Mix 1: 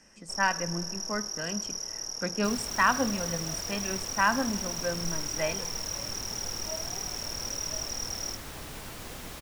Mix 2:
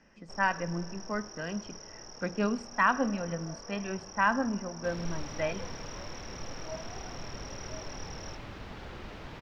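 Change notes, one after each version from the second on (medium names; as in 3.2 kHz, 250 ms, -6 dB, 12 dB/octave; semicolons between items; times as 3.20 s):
second sound: entry +2.40 s; master: add distance through air 240 m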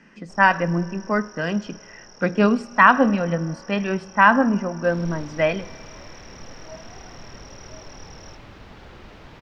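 speech +12.0 dB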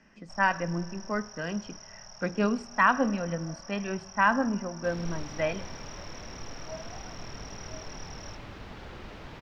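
speech -9.0 dB; first sound: add elliptic band-stop 200–600 Hz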